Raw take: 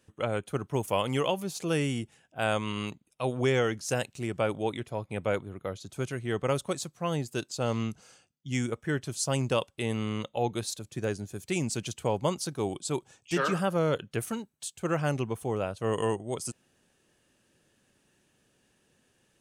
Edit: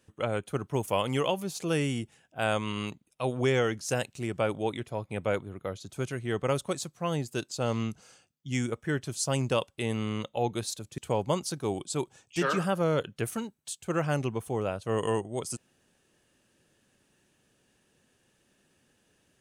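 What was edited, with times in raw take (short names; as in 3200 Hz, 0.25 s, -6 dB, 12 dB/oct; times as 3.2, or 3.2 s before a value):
10.98–11.93 cut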